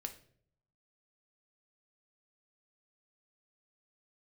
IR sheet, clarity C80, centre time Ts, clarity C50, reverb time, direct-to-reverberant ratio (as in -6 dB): 17.0 dB, 8 ms, 12.5 dB, 0.60 s, 5.5 dB